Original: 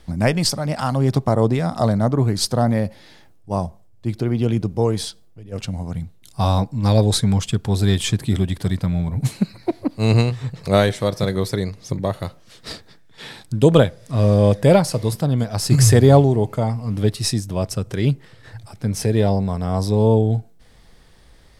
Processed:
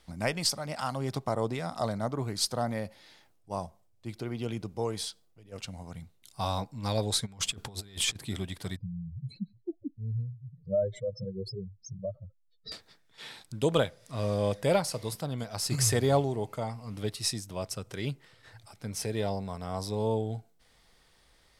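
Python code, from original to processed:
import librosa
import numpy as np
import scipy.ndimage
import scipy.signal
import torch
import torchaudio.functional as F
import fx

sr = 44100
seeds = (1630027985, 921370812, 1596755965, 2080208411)

y = fx.over_compress(x, sr, threshold_db=-24.0, ratio=-0.5, at=(7.25, 8.15), fade=0.02)
y = fx.spec_expand(y, sr, power=3.8, at=(8.76, 12.72))
y = fx.low_shelf(y, sr, hz=470.0, db=-10.5)
y = fx.notch(y, sr, hz=1700.0, q=19.0)
y = y * librosa.db_to_amplitude(-7.0)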